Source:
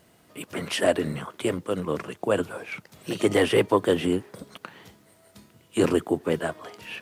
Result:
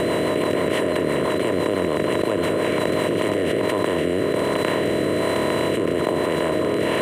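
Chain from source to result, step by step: spectral levelling over time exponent 0.2; peaking EQ 5.2 kHz -15 dB 0.78 oct; whistle 4 kHz -38 dBFS; rotary cabinet horn 6 Hz, later 1.2 Hz, at 2.67 s; level flattener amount 100%; trim -8.5 dB

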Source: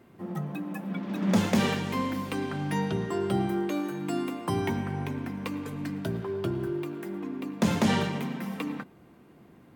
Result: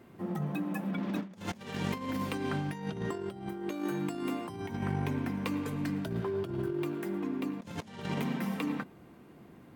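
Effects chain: compressor with a negative ratio -32 dBFS, ratio -0.5; trim -2 dB

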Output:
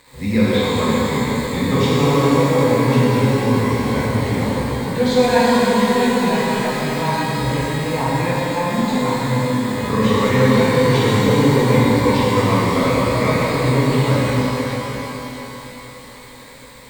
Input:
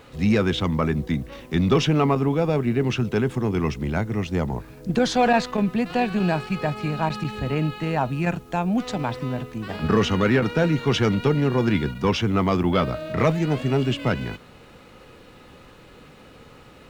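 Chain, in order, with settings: bit crusher 7-bit; rippled EQ curve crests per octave 0.99, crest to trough 10 dB; pitch-shifted reverb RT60 3.8 s, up +12 st, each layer -8 dB, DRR -9 dB; trim -5.5 dB

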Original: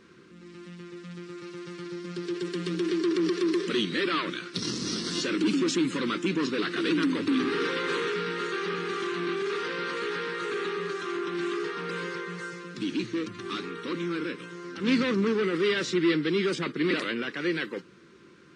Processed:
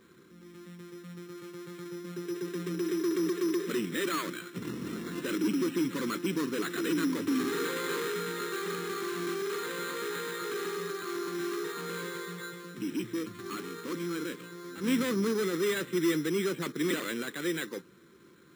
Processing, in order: careless resampling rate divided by 8×, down filtered, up hold; trim -3.5 dB

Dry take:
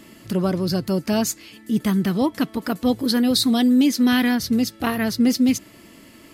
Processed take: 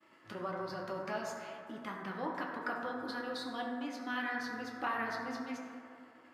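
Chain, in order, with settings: expander -40 dBFS; compression, threshold -24 dBFS, peak gain reduction 10.5 dB; band-pass filter 1.2 kHz, Q 1.4; reverberation RT60 2.5 s, pre-delay 4 ms, DRR -2 dB; trim -3.5 dB

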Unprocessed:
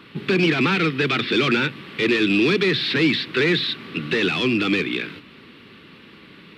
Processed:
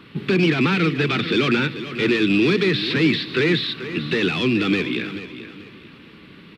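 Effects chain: bass shelf 240 Hz +6.5 dB; on a send: feedback delay 436 ms, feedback 32%, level -12.5 dB; on the sum: trim -1.5 dB

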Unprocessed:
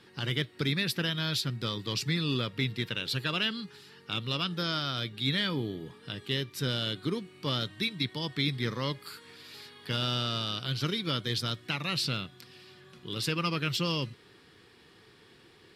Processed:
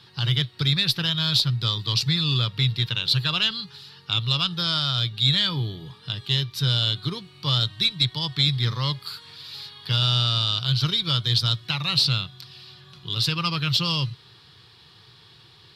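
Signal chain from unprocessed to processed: graphic EQ 125/250/500/1000/2000/4000/8000 Hz +10/-11/-6/+4/-6/+11/-5 dB; Chebyshev shaper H 2 -20 dB, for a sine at -9 dBFS; trim +4 dB

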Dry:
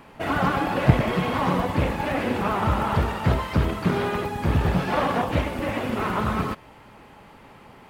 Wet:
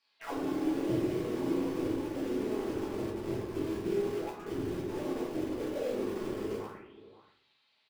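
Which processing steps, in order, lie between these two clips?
4.07–4.90 s: peaking EQ 820 Hz -8 dB 1.5 oct; on a send: multi-tap echo 48/136/232 ms -5.5/-9.5/-9 dB; on the sum: auto-wah 350–4900 Hz, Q 7.7, down, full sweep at -20 dBFS; echo from a far wall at 91 m, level -14 dB; in parallel at -6 dB: bit crusher 6-bit; on the sum: simulated room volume 92 m³, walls mixed, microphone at 1.6 m; trim -9 dB

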